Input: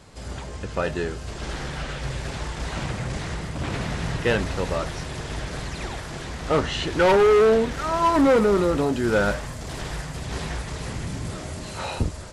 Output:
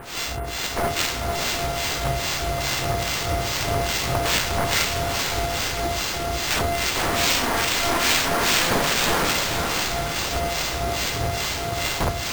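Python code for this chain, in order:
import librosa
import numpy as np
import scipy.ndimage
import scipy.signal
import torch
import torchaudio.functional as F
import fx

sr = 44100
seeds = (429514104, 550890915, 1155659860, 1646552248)

y = np.r_[np.sort(x[:len(x) // 64 * 64].reshape(-1, 64), axis=1).ravel(), x[len(x) // 64 * 64:]]
y = scipy.signal.sosfilt(scipy.signal.butter(2, 58.0, 'highpass', fs=sr, output='sos'), y)
y = fx.high_shelf(y, sr, hz=3300.0, db=5.5)
y = fx.hum_notches(y, sr, base_hz=50, count=5)
y = y + 0.45 * np.pad(y, (int(2.6 * sr / 1000.0), 0))[:len(y)]
y = (np.mod(10.0 ** (20.0 / 20.0) * y + 1.0, 2.0) - 1.0) / 10.0 ** (20.0 / 20.0)
y = fx.quant_dither(y, sr, seeds[0], bits=6, dither='triangular')
y = fx.harmonic_tremolo(y, sr, hz=2.4, depth_pct=100, crossover_hz=1700.0)
y = fx.echo_diffused(y, sr, ms=518, feedback_pct=46, wet_db=-4)
y = np.repeat(y[::4], 4)[:len(y)]
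y = y * librosa.db_to_amplitude(7.0)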